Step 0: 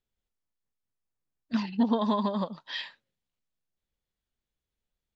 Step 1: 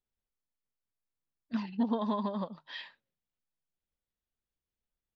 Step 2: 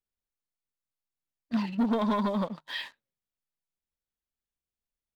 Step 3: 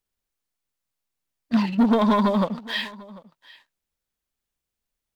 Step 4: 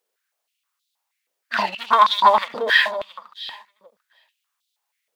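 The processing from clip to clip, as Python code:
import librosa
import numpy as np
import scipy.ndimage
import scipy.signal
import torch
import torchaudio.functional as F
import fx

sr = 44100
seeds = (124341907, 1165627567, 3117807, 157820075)

y1 = fx.high_shelf(x, sr, hz=5200.0, db=-11.5)
y1 = fx.hum_notches(y1, sr, base_hz=50, count=3)
y1 = y1 * librosa.db_to_amplitude(-5.0)
y2 = fx.leveller(y1, sr, passes=2)
y3 = y2 + 10.0 ** (-21.5 / 20.0) * np.pad(y2, (int(744 * sr / 1000.0), 0))[:len(y2)]
y3 = y3 * librosa.db_to_amplitude(8.0)
y4 = y3 + 10.0 ** (-17.5 / 20.0) * np.pad(y3, (int(677 * sr / 1000.0), 0))[:len(y3)]
y4 = fx.filter_held_highpass(y4, sr, hz=6.3, low_hz=480.0, high_hz=3700.0)
y4 = y4 * librosa.db_to_amplitude(6.0)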